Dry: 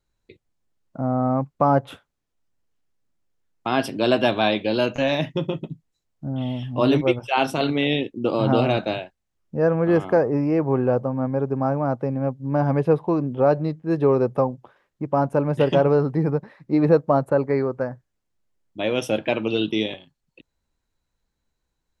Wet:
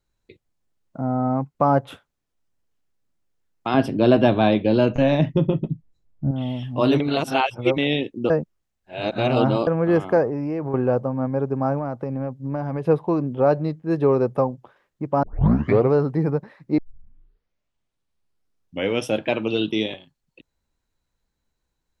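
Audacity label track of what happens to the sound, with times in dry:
1.000000	1.550000	notch comb filter 570 Hz
3.740000	6.310000	spectral tilt −3 dB per octave
7.000000	7.780000	reverse
8.300000	9.670000	reverse
10.270000	10.740000	downward compressor, threshold −22 dBFS
11.780000	12.850000	downward compressor, threshold −22 dBFS
15.230000	15.230000	tape start 0.69 s
16.780000	16.780000	tape start 2.31 s

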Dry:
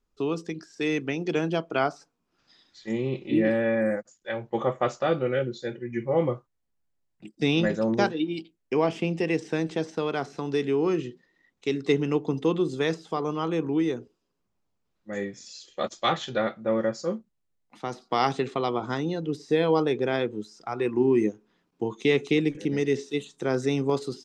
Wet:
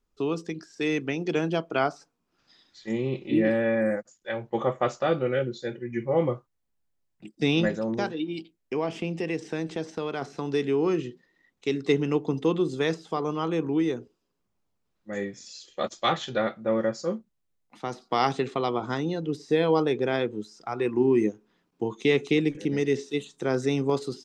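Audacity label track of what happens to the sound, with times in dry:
7.690000	10.220000	downward compressor 1.5 to 1, threshold −31 dBFS

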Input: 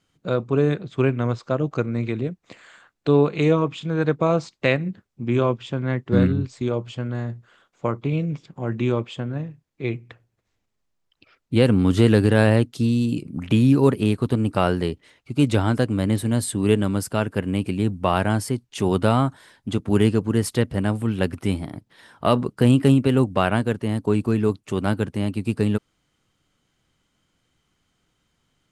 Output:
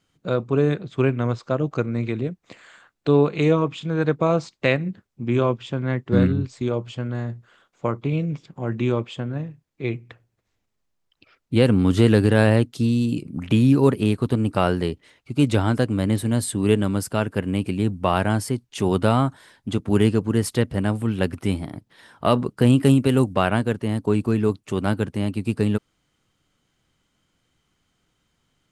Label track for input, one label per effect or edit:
22.760000	23.320000	high-shelf EQ 10,000 Hz → 5,200 Hz +9 dB

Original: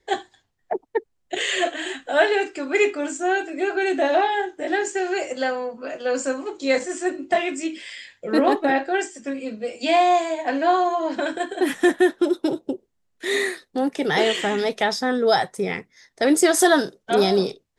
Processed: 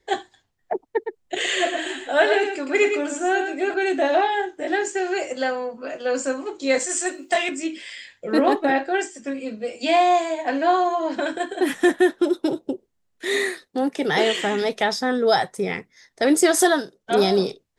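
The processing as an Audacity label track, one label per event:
0.890000	3.740000	single-tap delay 114 ms −7 dB
6.790000	7.490000	RIAA equalisation recording
13.670000	14.620000	high-pass filter 100 Hz
16.620000	17.150000	duck −8.5 dB, fades 0.24 s

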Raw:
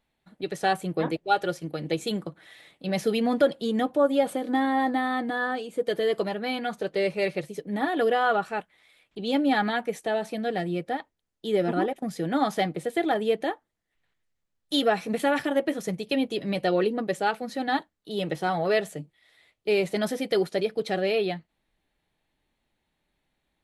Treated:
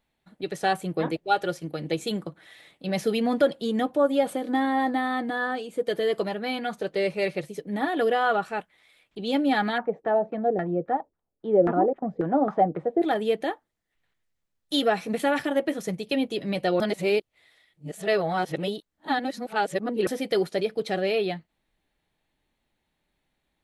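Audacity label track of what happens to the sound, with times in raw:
9.780000	13.020000	auto-filter low-pass saw down 3.7 Hz 410–1,500 Hz
16.800000	20.070000	reverse

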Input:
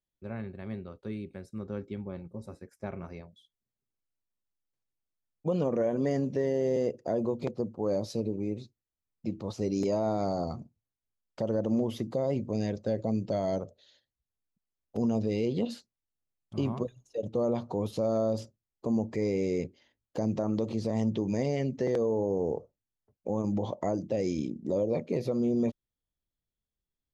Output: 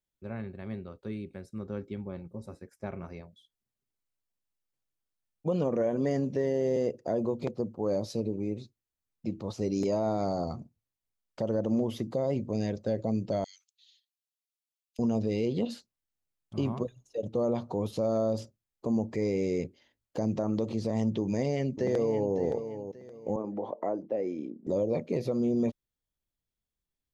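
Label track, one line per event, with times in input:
13.440000	14.990000	Butterworth high-pass 2,400 Hz
21.200000	22.340000	delay throw 570 ms, feedback 30%, level −10 dB
23.360000	24.670000	three-way crossover with the lows and the highs turned down lows −21 dB, under 250 Hz, highs −21 dB, over 2,000 Hz

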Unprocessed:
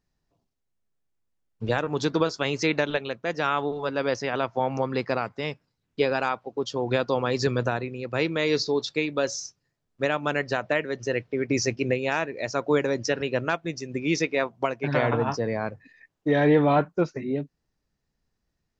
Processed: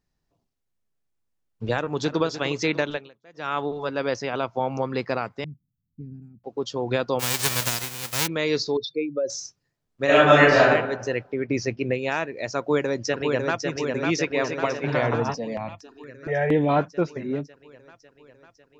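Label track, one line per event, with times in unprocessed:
1.740000	2.220000	delay throw 300 ms, feedback 55%, level −12 dB
2.860000	3.580000	duck −22.5 dB, fades 0.25 s
4.230000	4.790000	parametric band 1,800 Hz −5.5 dB → −15 dB 0.21 octaves
5.440000	6.440000	inverse Chebyshev band-stop filter 530–6,300 Hz, stop band 50 dB
7.190000	8.260000	spectral envelope flattened exponent 0.1
8.770000	9.300000	expanding power law on the bin magnitudes exponent 2.4
10.050000	10.700000	thrown reverb, RT60 0.95 s, DRR −11.5 dB
11.340000	11.940000	high-frequency loss of the air 130 metres
12.580000	13.600000	delay throw 550 ms, feedback 70%, level −4 dB
14.150000	14.610000	delay throw 290 ms, feedback 30%, level −8 dB
15.340000	16.690000	step-sequenced phaser 4.3 Hz 380–4,500 Hz

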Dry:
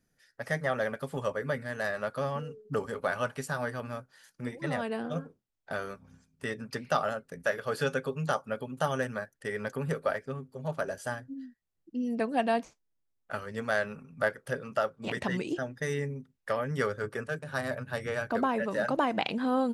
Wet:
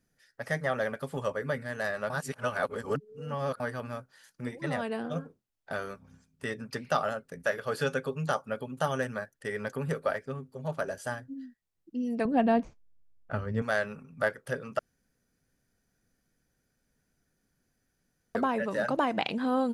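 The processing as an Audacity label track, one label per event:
2.100000	3.600000	reverse
12.250000	13.620000	RIAA equalisation playback
14.790000	18.350000	fill with room tone

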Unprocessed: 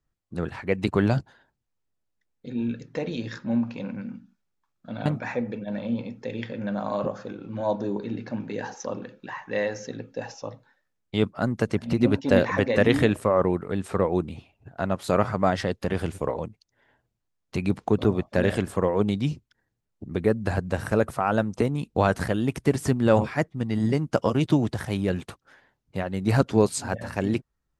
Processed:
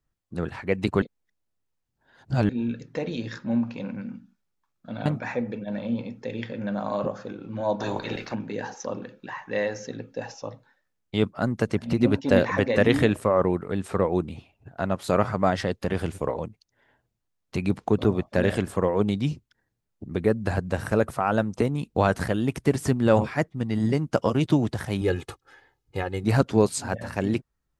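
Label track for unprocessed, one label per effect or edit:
1.020000	2.490000	reverse
7.790000	8.330000	ceiling on every frequency bin ceiling under each frame's peak by 23 dB
25.010000	26.240000	comb filter 2.4 ms, depth 77%

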